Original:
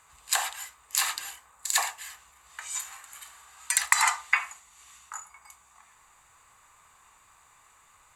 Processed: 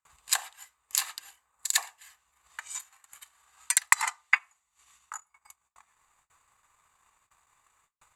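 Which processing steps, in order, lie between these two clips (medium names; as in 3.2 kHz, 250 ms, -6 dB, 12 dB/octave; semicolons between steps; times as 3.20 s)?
gate with hold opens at -49 dBFS; transient shaper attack +11 dB, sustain -7 dB, from 2.88 s sustain -12 dB; trim -9.5 dB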